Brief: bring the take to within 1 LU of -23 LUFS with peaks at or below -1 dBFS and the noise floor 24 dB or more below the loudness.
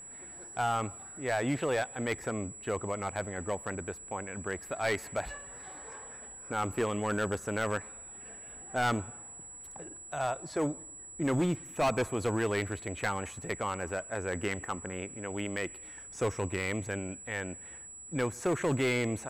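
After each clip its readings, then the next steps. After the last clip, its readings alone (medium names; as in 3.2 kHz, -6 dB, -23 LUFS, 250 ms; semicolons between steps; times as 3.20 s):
clipped samples 1.5%; clipping level -23.5 dBFS; steady tone 7.8 kHz; tone level -45 dBFS; loudness -33.5 LUFS; peak level -23.5 dBFS; loudness target -23.0 LUFS
-> clip repair -23.5 dBFS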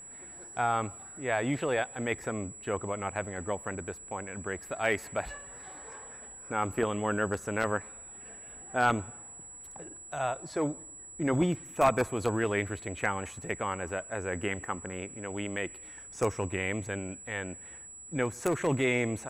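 clipped samples 0.0%; steady tone 7.8 kHz; tone level -45 dBFS
-> band-stop 7.8 kHz, Q 30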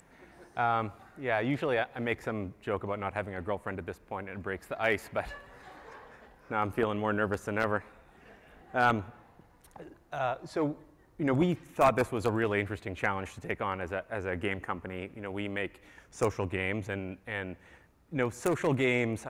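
steady tone not found; loudness -32.5 LUFS; peak level -14.5 dBFS; loudness target -23.0 LUFS
-> trim +9.5 dB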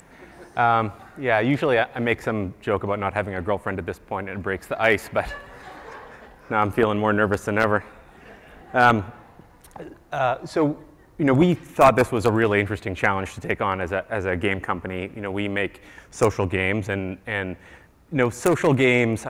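loudness -23.0 LUFS; peak level -5.0 dBFS; noise floor -51 dBFS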